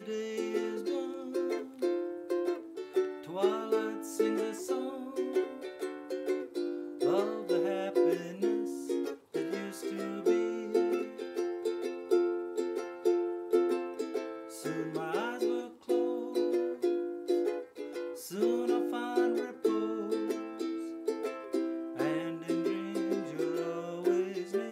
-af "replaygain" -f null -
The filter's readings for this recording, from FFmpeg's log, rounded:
track_gain = +11.9 dB
track_peak = 0.123